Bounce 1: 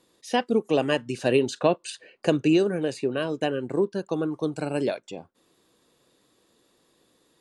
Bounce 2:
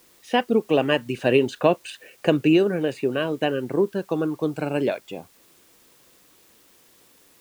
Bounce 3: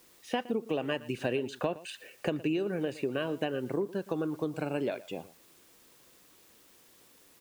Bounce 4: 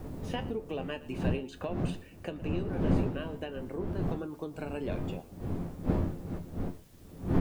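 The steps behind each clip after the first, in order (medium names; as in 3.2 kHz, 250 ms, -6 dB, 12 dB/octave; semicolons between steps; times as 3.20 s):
resonant high shelf 3.7 kHz -7.5 dB, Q 1.5; in parallel at -9 dB: word length cut 8-bit, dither triangular
compression 5:1, threshold -24 dBFS, peak gain reduction 11 dB; echo from a far wall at 20 m, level -18 dB; trim -4 dB
wind noise 240 Hz -29 dBFS; gain riding within 3 dB 2 s; feedback comb 88 Hz, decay 0.18 s, harmonics all, mix 70%; trim -1.5 dB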